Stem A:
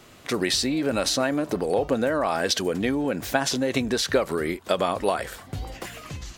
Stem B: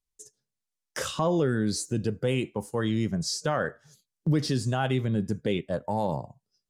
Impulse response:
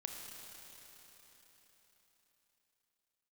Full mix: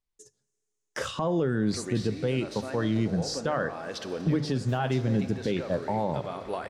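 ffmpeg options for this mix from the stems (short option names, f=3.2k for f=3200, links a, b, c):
-filter_complex "[0:a]adelay=1450,volume=-10.5dB,asplit=2[a][b];[b]volume=-3dB[c];[1:a]bandreject=f=50:t=h:w=6,bandreject=f=100:t=h:w=6,bandreject=f=150:t=h:w=6,volume=1.5dB,asplit=3[d][e][f];[e]volume=-17.5dB[g];[f]apad=whole_len=345027[h];[a][h]sidechaincompress=threshold=-34dB:ratio=8:attack=16:release=589[i];[2:a]atrim=start_sample=2205[j];[c][g]amix=inputs=2:normalize=0[k];[k][j]afir=irnorm=-1:irlink=0[l];[i][d][l]amix=inputs=3:normalize=0,aemphasis=mode=reproduction:type=50kf,alimiter=limit=-17dB:level=0:latency=1:release=298"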